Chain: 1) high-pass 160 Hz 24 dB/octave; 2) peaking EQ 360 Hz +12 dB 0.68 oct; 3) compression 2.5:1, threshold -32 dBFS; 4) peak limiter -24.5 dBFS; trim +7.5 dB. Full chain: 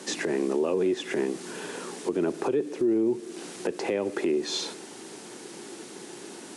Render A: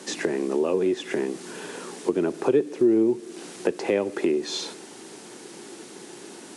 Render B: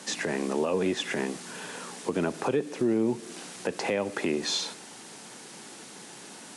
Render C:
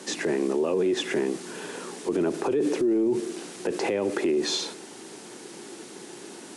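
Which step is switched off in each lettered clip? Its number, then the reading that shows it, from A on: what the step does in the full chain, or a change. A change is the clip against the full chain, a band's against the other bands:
4, crest factor change +5.0 dB; 2, 500 Hz band -5.0 dB; 3, mean gain reduction 6.5 dB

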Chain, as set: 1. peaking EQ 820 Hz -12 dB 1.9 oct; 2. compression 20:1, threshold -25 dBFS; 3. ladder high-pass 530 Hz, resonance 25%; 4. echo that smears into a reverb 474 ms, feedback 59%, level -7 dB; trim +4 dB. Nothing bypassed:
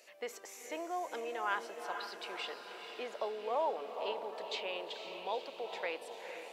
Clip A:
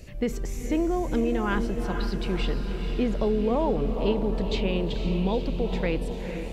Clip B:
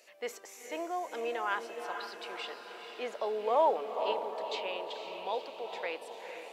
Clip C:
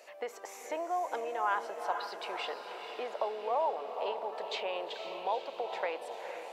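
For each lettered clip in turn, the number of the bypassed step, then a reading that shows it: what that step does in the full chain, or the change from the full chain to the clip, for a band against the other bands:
3, 250 Hz band +20.5 dB; 2, mean gain reduction 1.5 dB; 1, 1 kHz band +5.0 dB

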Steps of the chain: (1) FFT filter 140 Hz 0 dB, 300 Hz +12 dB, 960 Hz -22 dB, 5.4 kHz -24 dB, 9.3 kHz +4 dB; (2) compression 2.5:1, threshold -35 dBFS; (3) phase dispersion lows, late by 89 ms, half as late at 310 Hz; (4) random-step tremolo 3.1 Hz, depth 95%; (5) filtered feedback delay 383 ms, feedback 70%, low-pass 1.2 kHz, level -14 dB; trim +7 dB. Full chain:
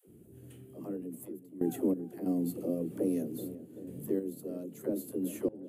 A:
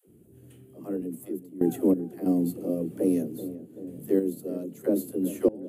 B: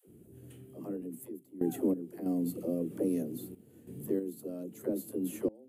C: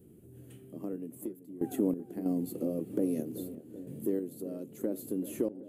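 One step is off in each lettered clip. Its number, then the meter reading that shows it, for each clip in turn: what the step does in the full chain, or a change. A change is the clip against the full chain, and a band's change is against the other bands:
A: 2, mean gain reduction 4.0 dB; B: 5, echo-to-direct -16.0 dB to none; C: 3, crest factor change +1.5 dB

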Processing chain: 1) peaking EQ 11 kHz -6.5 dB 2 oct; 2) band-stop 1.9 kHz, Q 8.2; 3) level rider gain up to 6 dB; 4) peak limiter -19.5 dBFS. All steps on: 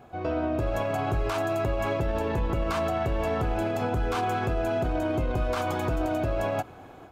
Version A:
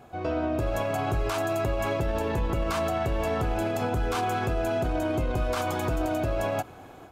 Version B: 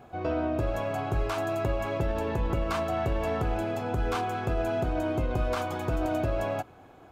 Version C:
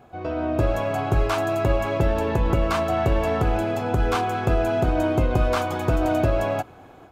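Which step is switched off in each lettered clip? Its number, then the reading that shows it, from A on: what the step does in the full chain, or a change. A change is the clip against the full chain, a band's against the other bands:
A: 1, 8 kHz band +5.0 dB; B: 3, crest factor change +1.5 dB; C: 4, mean gain reduction 4.0 dB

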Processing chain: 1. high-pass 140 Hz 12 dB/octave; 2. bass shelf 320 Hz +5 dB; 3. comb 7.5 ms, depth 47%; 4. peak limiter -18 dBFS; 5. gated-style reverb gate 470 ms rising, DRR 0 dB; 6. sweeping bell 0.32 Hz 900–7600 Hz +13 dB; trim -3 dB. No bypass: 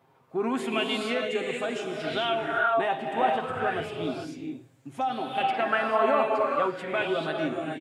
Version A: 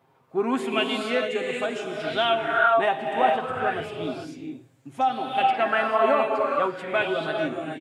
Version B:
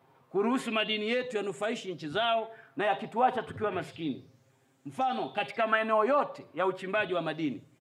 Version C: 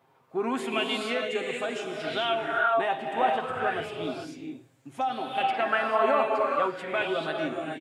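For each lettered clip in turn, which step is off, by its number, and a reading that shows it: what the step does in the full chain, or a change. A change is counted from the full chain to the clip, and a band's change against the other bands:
4, momentary loudness spread change +2 LU; 5, loudness change -3.0 LU; 2, 125 Hz band -4.0 dB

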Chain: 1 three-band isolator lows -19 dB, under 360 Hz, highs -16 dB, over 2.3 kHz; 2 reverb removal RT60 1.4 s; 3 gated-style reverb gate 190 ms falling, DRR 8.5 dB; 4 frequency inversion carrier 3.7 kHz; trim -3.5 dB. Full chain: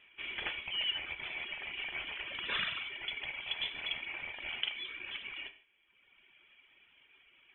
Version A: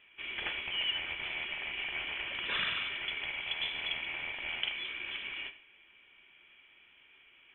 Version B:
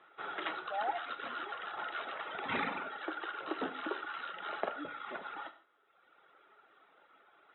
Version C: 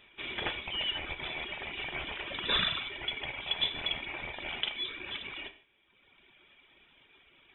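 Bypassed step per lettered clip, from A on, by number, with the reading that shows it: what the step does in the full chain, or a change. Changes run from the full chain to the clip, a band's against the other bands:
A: 2, loudness change +2.5 LU; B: 4, 4 kHz band -24.0 dB; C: 1, 2 kHz band -8.0 dB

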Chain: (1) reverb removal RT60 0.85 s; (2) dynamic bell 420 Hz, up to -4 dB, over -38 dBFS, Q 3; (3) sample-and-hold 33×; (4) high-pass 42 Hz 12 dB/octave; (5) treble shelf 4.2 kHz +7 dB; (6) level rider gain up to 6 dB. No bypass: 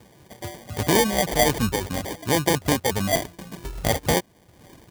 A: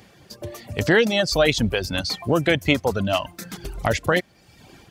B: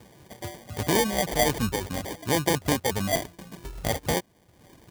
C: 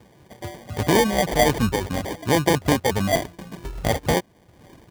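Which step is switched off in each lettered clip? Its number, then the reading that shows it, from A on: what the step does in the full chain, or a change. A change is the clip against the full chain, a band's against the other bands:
3, crest factor change -3.0 dB; 6, momentary loudness spread change -1 LU; 5, 8 kHz band -5.0 dB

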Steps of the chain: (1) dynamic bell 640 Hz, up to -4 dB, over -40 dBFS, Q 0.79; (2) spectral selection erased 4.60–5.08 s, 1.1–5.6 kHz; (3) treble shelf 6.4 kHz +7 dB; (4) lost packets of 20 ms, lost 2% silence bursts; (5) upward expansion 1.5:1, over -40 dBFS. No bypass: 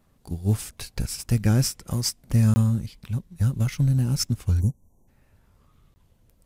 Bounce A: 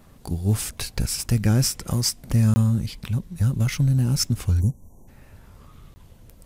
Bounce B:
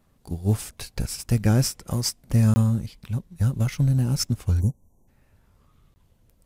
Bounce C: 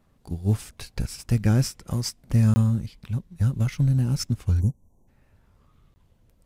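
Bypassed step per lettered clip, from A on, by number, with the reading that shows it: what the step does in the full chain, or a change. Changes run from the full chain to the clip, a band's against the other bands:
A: 5, momentary loudness spread change -2 LU; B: 1, 500 Hz band +2.5 dB; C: 3, 8 kHz band -5.5 dB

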